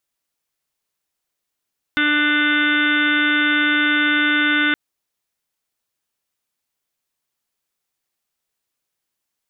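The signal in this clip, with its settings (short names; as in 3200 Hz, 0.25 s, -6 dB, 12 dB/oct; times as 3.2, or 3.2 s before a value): steady additive tone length 2.77 s, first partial 297 Hz, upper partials -17.5/-18/-9/3.5/-7/-1/-16/-9/-10/-15/-5 dB, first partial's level -21 dB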